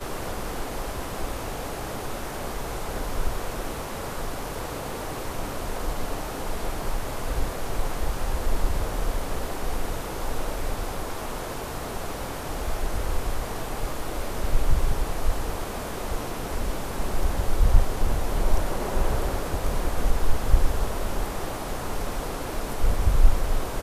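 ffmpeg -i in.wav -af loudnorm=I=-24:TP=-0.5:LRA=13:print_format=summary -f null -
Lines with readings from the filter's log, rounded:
Input Integrated:    -30.4 LUFS
Input True Peak:      -3.2 dBTP
Input LRA:             4.5 LU
Input Threshold:     -40.4 LUFS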